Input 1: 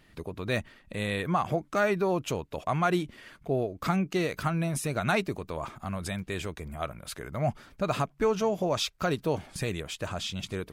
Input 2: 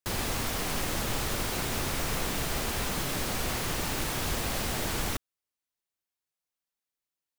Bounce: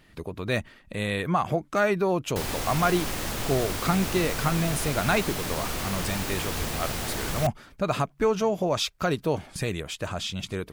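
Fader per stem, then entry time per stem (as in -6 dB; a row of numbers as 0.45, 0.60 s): +2.5, 0.0 dB; 0.00, 2.30 s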